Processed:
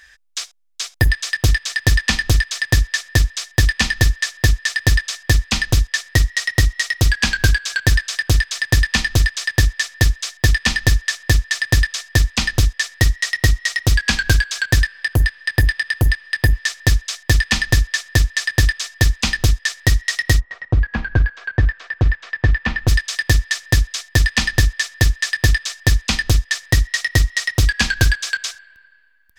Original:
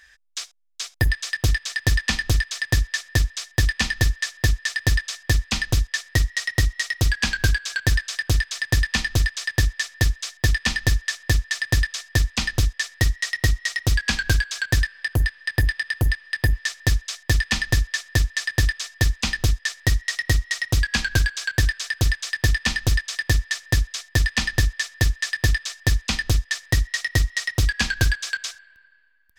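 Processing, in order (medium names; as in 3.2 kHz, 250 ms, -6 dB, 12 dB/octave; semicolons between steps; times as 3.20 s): 20.39–22.87 s: low-pass 1 kHz -> 2 kHz 12 dB/octave; trim +5 dB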